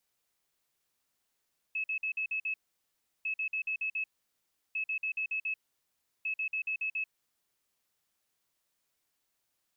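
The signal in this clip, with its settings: beep pattern sine 2.59 kHz, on 0.09 s, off 0.05 s, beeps 6, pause 0.71 s, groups 4, -30 dBFS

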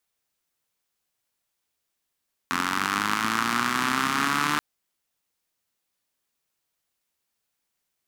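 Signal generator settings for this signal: four-cylinder engine model, changing speed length 2.08 s, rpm 2600, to 4500, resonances 250/1200 Hz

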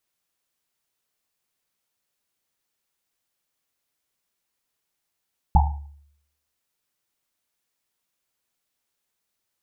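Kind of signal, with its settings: Risset drum, pitch 72 Hz, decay 0.72 s, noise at 840 Hz, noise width 160 Hz, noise 35%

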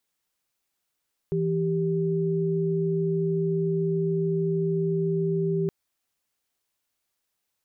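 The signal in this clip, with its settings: chord E3/G4 sine, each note -25 dBFS 4.37 s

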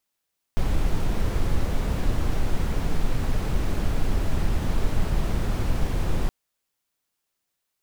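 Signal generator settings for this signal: noise brown, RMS -21 dBFS 5.72 s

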